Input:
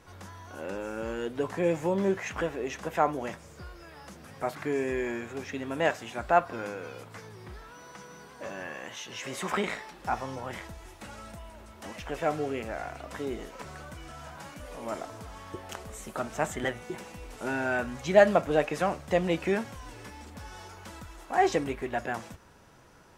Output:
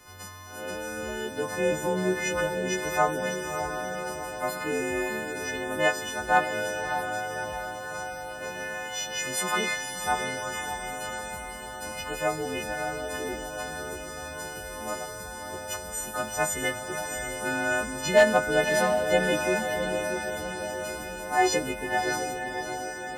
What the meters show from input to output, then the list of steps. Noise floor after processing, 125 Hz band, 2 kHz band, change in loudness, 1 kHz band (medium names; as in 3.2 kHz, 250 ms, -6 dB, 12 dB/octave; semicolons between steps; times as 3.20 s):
-39 dBFS, 0.0 dB, +7.5 dB, +2.0 dB, +3.5 dB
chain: partials quantised in pitch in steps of 3 st; hard clipper -10.5 dBFS, distortion -24 dB; echo that smears into a reverb 610 ms, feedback 60%, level -5.5 dB